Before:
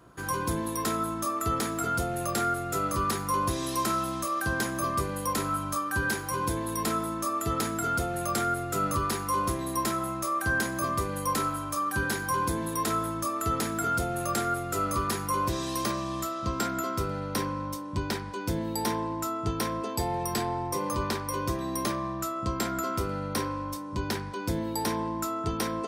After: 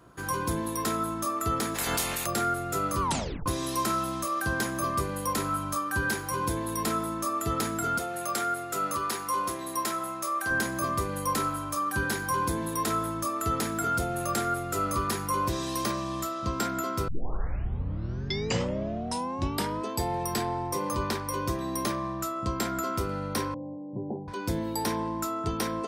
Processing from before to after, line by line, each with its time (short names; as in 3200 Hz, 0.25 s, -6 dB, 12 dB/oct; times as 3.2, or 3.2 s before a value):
1.74–2.25 spectral limiter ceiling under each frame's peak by 29 dB
3.01 tape stop 0.45 s
7.98–10.51 HPF 460 Hz 6 dB/oct
17.08 tape start 2.82 s
23.54–24.28 Chebyshev band-pass 110–820 Hz, order 5